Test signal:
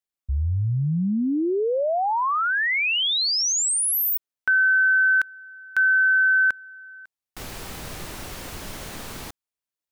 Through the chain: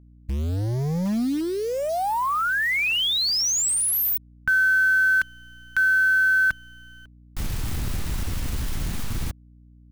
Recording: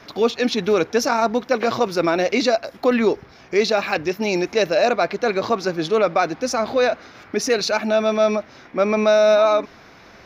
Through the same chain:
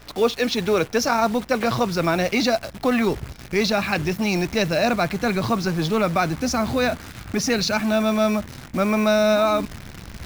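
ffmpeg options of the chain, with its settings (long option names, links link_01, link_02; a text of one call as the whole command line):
ffmpeg -i in.wav -filter_complex "[0:a]asubboost=boost=12:cutoff=140,acrossover=split=330[link_01][link_02];[link_01]asoftclip=type=hard:threshold=-24dB[link_03];[link_03][link_02]amix=inputs=2:normalize=0,acrusher=bits=7:dc=4:mix=0:aa=0.000001,aeval=exprs='val(0)+0.00355*(sin(2*PI*60*n/s)+sin(2*PI*2*60*n/s)/2+sin(2*PI*3*60*n/s)/3+sin(2*PI*4*60*n/s)/4+sin(2*PI*5*60*n/s)/5)':channel_layout=same" out.wav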